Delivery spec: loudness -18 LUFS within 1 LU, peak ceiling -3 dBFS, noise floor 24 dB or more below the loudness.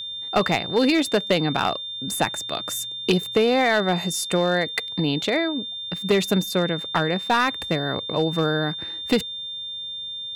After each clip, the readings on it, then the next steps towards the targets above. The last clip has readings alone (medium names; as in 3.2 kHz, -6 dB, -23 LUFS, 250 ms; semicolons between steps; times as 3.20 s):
clipped samples 0.5%; clipping level -12.5 dBFS; steady tone 3.6 kHz; tone level -30 dBFS; loudness -23.0 LUFS; peak level -12.5 dBFS; loudness target -18.0 LUFS
-> clip repair -12.5 dBFS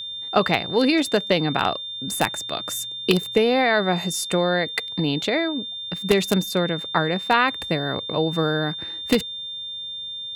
clipped samples 0.0%; steady tone 3.6 kHz; tone level -30 dBFS
-> band-stop 3.6 kHz, Q 30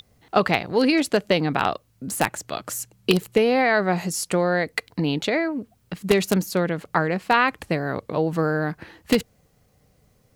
steady tone not found; loudness -23.0 LUFS; peak level -3.5 dBFS; loudness target -18.0 LUFS
-> trim +5 dB; peak limiter -3 dBFS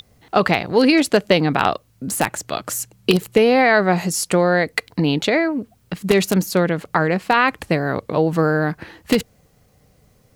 loudness -18.5 LUFS; peak level -3.0 dBFS; noise floor -57 dBFS